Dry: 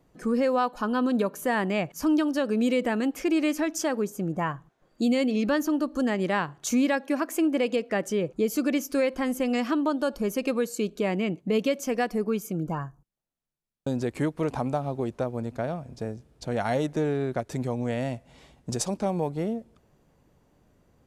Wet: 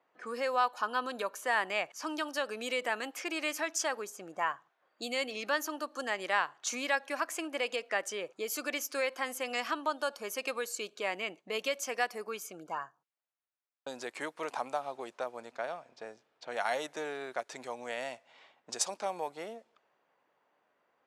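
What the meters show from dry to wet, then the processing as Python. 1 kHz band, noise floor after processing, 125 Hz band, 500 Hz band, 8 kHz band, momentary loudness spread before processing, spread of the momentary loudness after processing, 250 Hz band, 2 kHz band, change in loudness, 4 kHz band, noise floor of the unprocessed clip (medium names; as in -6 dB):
-2.5 dB, -77 dBFS, under -25 dB, -9.0 dB, -1.5 dB, 8 LU, 11 LU, -19.5 dB, 0.0 dB, -7.5 dB, 0.0 dB, -66 dBFS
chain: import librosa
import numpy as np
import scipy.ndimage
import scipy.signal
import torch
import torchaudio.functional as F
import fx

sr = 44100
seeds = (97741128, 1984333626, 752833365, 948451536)

y = fx.env_lowpass(x, sr, base_hz=2400.0, full_db=-23.0)
y = scipy.signal.sosfilt(scipy.signal.butter(2, 840.0, 'highpass', fs=sr, output='sos'), y)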